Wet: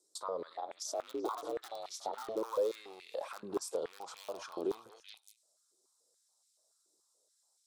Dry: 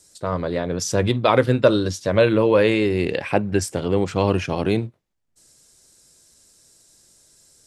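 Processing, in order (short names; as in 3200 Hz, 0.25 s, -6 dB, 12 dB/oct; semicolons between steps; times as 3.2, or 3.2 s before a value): rattling part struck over -22 dBFS, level -21 dBFS; gate with hold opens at -42 dBFS; in parallel at -6.5 dB: wrapped overs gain 9 dB; on the sum: delay with a stepping band-pass 0.189 s, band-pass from 1300 Hz, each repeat 1.4 oct, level -12 dB; limiter -14 dBFS, peak gain reduction 10.5 dB; 0.49–2.35 ring modulator 110 Hz -> 340 Hz; compressor 4:1, threshold -37 dBFS, peak gain reduction 15.5 dB; band shelf 2100 Hz -15 dB 1.1 oct; stepped high-pass 7 Hz 370–2300 Hz; gain -3 dB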